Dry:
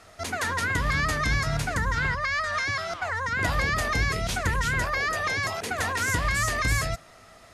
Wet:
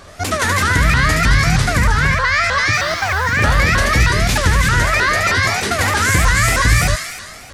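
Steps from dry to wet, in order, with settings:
loose part that buzzes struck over −25 dBFS, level −37 dBFS
low-shelf EQ 280 Hz +5.5 dB
in parallel at +1 dB: brickwall limiter −17 dBFS, peak gain reduction 7.5 dB
0:02.73–0:03.24: on the sum: log-companded quantiser 6 bits
on a send: delay with a high-pass on its return 74 ms, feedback 74%, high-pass 1,900 Hz, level −3 dB
on the sum: pitch modulation by a square or saw wave saw up 3.2 Hz, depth 250 cents
level +3.5 dB

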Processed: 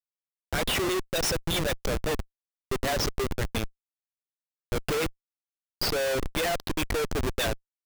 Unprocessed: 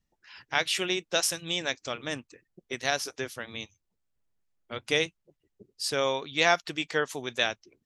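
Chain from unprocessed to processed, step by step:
spectral envelope exaggerated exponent 2
rotating-speaker cabinet horn 7.5 Hz
comparator with hysteresis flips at −36 dBFS
level +8 dB

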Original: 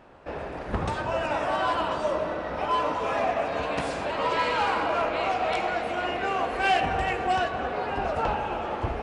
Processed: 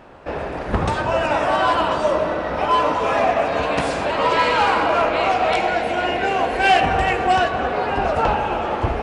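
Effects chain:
0:05.55–0:06.70: notch filter 1,200 Hz, Q 5.4
level +8 dB

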